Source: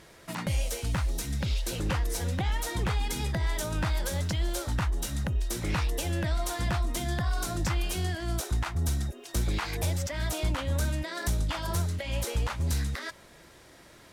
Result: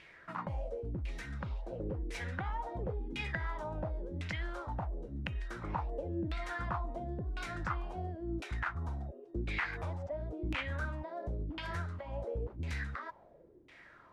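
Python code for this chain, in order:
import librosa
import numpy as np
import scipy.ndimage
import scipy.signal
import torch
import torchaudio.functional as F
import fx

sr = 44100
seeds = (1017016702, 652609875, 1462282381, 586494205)

y = fx.filter_lfo_lowpass(x, sr, shape='saw_down', hz=0.95, low_hz=290.0, high_hz=2600.0, q=4.2)
y = librosa.effects.preemphasis(y, coef=0.8, zi=[0.0])
y = y * 10.0 ** (3.5 / 20.0)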